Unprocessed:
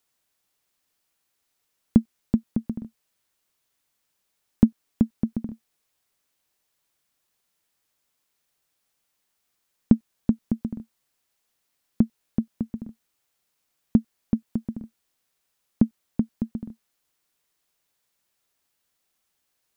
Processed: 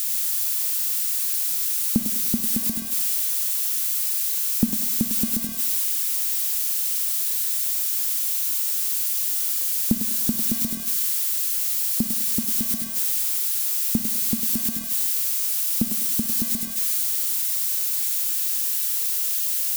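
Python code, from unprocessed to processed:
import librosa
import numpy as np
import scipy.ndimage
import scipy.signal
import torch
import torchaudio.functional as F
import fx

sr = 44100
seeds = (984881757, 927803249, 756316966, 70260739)

p1 = x + 0.5 * 10.0 ** (-17.0 / 20.0) * np.diff(np.sign(x), prepend=np.sign(x[:1]))
p2 = p1 + fx.echo_thinned(p1, sr, ms=101, feedback_pct=57, hz=360.0, wet_db=-6.0, dry=0)
p3 = fx.rev_schroeder(p2, sr, rt60_s=1.1, comb_ms=30, drr_db=13.5)
p4 = fx.rider(p3, sr, range_db=10, speed_s=0.5)
y = p4 * 10.0 ** (-4.5 / 20.0)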